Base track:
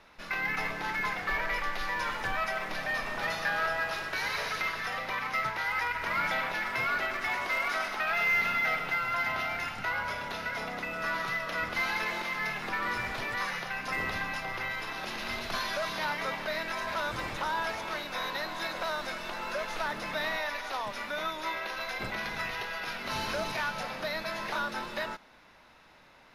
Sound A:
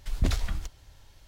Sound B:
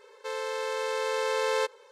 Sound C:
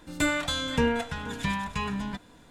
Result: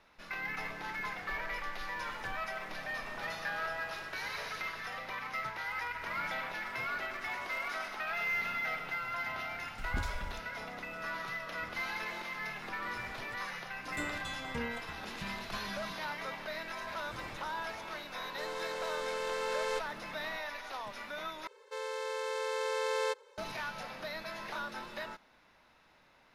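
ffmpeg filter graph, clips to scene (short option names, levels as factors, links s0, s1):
-filter_complex "[2:a]asplit=2[s0][s1];[0:a]volume=0.447,asplit=2[s2][s3];[s2]atrim=end=21.474[s4];[s1]atrim=end=1.91,asetpts=PTS-STARTPTS,volume=0.531[s5];[s3]atrim=start=23.376[s6];[1:a]atrim=end=1.27,asetpts=PTS-STARTPTS,volume=0.282,afade=t=in:d=0.004:c=hsin,afade=t=out:st=1.266:d=0.004:c=hsin,adelay=9720[s7];[3:a]atrim=end=2.5,asetpts=PTS-STARTPTS,volume=0.188,afade=t=in:d=0.004:c=hsin,afade=t=out:st=2.496:d=0.004:c=hsin,adelay=13770[s8];[s0]atrim=end=1.91,asetpts=PTS-STARTPTS,volume=0.422,afade=t=in:d=0.004:c=hsin,afade=t=out:st=1.906:d=0.004:c=hsin,adelay=18130[s9];[s4][s5]acrossfade=d=0.004:c1=hsin:c2=hsin[s10];[s10][s6]acrossfade=d=0.004:c1=hsin:c2=hsin[s11];[s11][s7][s8][s9]amix=inputs=4:normalize=0"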